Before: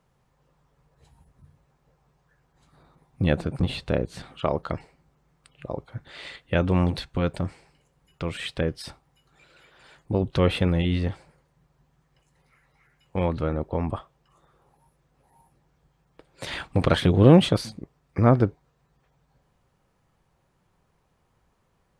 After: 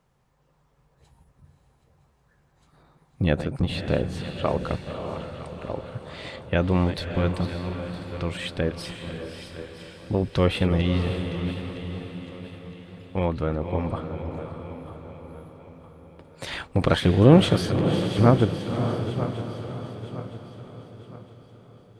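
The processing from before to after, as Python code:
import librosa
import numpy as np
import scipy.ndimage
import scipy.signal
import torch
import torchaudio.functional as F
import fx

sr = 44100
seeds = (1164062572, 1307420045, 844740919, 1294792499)

y = fx.reverse_delay_fb(x, sr, ms=481, feedback_pct=62, wet_db=-12)
y = fx.echo_diffused(y, sr, ms=569, feedback_pct=48, wet_db=-8)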